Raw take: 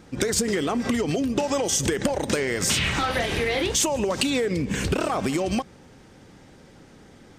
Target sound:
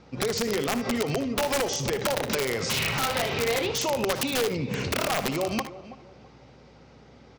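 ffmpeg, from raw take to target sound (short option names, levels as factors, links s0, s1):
-filter_complex "[0:a]highpass=f=100:w=0.5412,highpass=f=100:w=1.3066,equalizer=f=190:t=q:w=4:g=-7,equalizer=f=310:t=q:w=4:g=-9,equalizer=f=1700:t=q:w=4:g=-8,equalizer=f=3300:t=q:w=4:g=-5,lowpass=f=5200:w=0.5412,lowpass=f=5200:w=1.3066,asplit=2[s0][s1];[s1]adelay=329,lowpass=f=3100:p=1,volume=0.168,asplit=2[s2][s3];[s3]adelay=329,lowpass=f=3100:p=1,volume=0.31,asplit=2[s4][s5];[s5]adelay=329,lowpass=f=3100:p=1,volume=0.31[s6];[s2][s4][s6]amix=inputs=3:normalize=0[s7];[s0][s7]amix=inputs=2:normalize=0,aeval=exprs='(mod(8.41*val(0)+1,2)-1)/8.41':c=same,asplit=2[s8][s9];[s9]aecho=0:1:61|76:0.188|0.2[s10];[s8][s10]amix=inputs=2:normalize=0,aeval=exprs='val(0)+0.00126*(sin(2*PI*60*n/s)+sin(2*PI*2*60*n/s)/2+sin(2*PI*3*60*n/s)/3+sin(2*PI*4*60*n/s)/4+sin(2*PI*5*60*n/s)/5)':c=same"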